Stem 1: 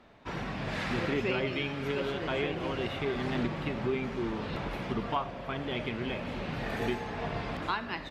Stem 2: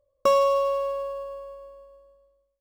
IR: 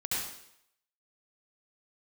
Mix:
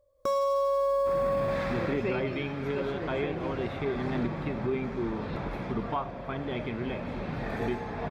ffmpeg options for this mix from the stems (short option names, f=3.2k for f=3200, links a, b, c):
-filter_complex "[0:a]highshelf=f=2.2k:g=-8.5,bandreject=f=2.9k:w=8.4,adelay=800,volume=2dB[a];[1:a]bandreject=f=2.8k:w=5.8,dynaudnorm=f=130:g=3:m=8.5dB,volume=2.5dB[b];[a][b]amix=inputs=2:normalize=0,alimiter=limit=-20.5dB:level=0:latency=1:release=13"